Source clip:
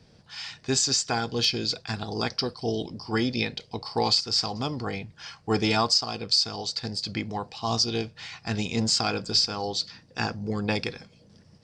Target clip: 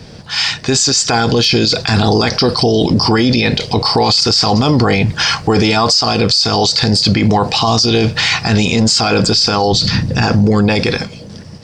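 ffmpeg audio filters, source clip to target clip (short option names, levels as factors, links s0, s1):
-filter_complex "[0:a]asplit=3[s0][s1][s2];[s0]afade=t=out:st=9.71:d=0.02[s3];[s1]bass=f=250:g=14,treble=f=4000:g=-1,afade=t=in:st=9.71:d=0.02,afade=t=out:st=10.21:d=0.02[s4];[s2]afade=t=in:st=10.21:d=0.02[s5];[s3][s4][s5]amix=inputs=3:normalize=0,dynaudnorm=f=240:g=9:m=3.76,alimiter=level_in=16.8:limit=0.891:release=50:level=0:latency=1,volume=0.708"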